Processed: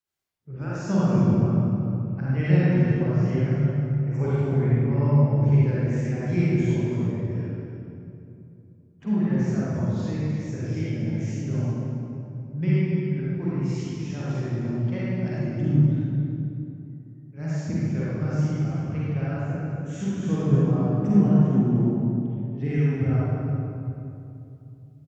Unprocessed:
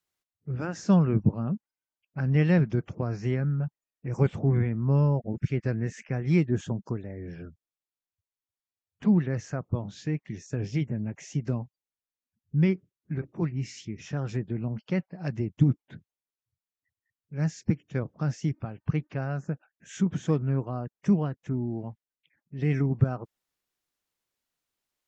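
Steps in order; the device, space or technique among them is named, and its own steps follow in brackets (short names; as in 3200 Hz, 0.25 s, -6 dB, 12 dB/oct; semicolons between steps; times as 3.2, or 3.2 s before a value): cave (echo 0.301 s -12 dB; reverb RT60 2.8 s, pre-delay 38 ms, DRR -9 dB); 20.51–22.78 low shelf 430 Hz +6 dB; gain -7.5 dB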